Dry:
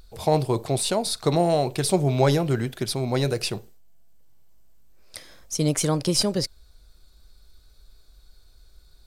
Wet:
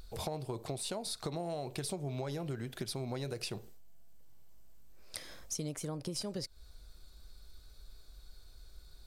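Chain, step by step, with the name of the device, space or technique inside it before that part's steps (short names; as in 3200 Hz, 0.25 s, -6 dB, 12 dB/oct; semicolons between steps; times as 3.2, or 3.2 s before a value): serial compression, peaks first (compressor 4:1, threshold -32 dBFS, peak gain reduction 15 dB; compressor 2:1, threshold -37 dBFS, peak gain reduction 6 dB); 5.76–6.16 bell 4200 Hz -6 dB 2.7 oct; gain -1 dB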